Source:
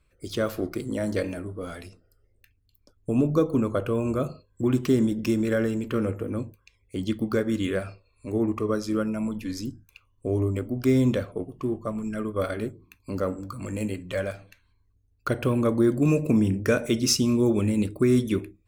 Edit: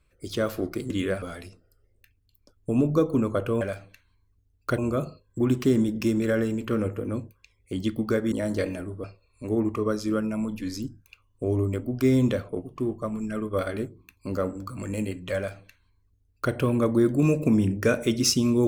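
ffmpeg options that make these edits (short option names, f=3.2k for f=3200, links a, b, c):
-filter_complex "[0:a]asplit=7[a][b][c][d][e][f][g];[a]atrim=end=0.902[h];[b]atrim=start=7.548:end=7.872[i];[c]atrim=start=1.618:end=4.012[j];[d]atrim=start=14.188:end=15.362[k];[e]atrim=start=4.008:end=7.552[l];[f]atrim=start=0.898:end=1.622[m];[g]atrim=start=7.868[n];[h][i]acrossfade=d=0.004:c1=hsin:c2=hsin[o];[o][j]acrossfade=d=0.004:c1=hsin:c2=hsin[p];[p][k]acrossfade=d=0.004:c1=hsin:c2=hsin[q];[q][l]acrossfade=d=0.004:c1=hsin:c2=hsin[r];[r][m]acrossfade=d=0.004:c1=hsin:c2=hsin[s];[s][n]acrossfade=d=0.004:c1=hsin:c2=hsin"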